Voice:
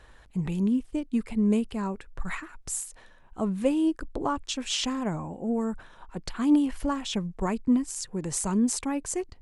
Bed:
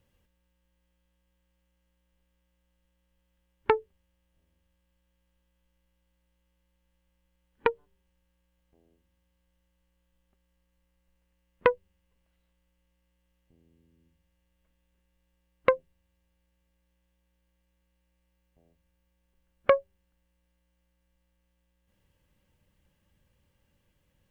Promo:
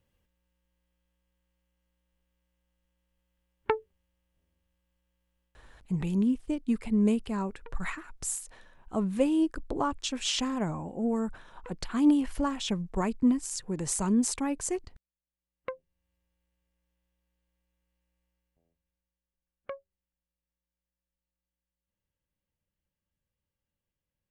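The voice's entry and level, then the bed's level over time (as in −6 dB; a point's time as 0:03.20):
5.55 s, −1.0 dB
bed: 0:05.44 −4 dB
0:06.02 −26 dB
0:15.18 −26 dB
0:16.10 −6 dB
0:18.23 −6 dB
0:19.24 −18.5 dB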